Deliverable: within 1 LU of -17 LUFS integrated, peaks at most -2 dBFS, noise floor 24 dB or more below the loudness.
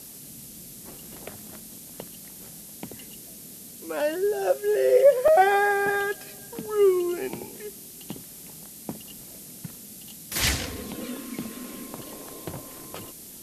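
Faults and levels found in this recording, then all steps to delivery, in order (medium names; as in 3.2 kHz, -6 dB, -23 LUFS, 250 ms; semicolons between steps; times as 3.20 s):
dropouts 1; longest dropout 2.5 ms; noise floor -44 dBFS; noise floor target -48 dBFS; loudness -24.0 LUFS; peak level -7.5 dBFS; loudness target -17.0 LUFS
-> interpolate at 5.28 s, 2.5 ms; noise print and reduce 6 dB; trim +7 dB; peak limiter -2 dBFS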